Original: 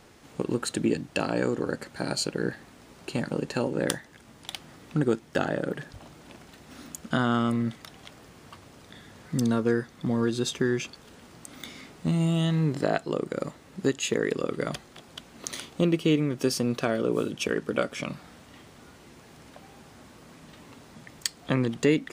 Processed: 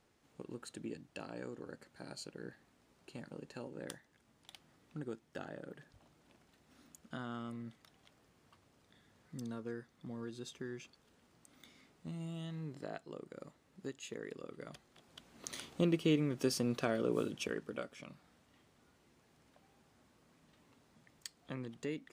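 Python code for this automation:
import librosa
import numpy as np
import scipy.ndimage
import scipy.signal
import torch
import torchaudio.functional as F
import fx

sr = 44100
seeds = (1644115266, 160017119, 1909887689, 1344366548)

y = fx.gain(x, sr, db=fx.line((14.73, -19.0), (15.66, -8.0), (17.26, -8.0), (17.98, -18.5)))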